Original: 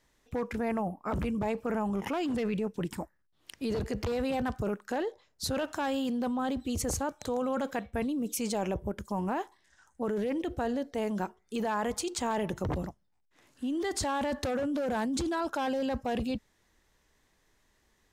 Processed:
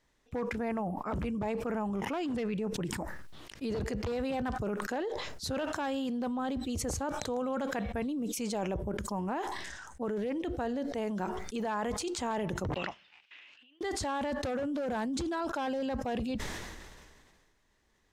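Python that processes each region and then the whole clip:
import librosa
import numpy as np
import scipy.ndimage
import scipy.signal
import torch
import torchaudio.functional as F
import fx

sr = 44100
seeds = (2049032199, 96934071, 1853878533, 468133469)

y = fx.chain(x, sr, fx.over_compress(threshold_db=-36.0, ratio=-0.5),
    fx.bandpass_q(hz=2700.0, q=4.9),
    fx.air_absorb(metres=98.0), at=(12.74, 13.81))
y = fx.high_shelf(y, sr, hz=11000.0, db=-11.0)
y = fx.sustainer(y, sr, db_per_s=31.0)
y = y * 10.0 ** (-2.5 / 20.0)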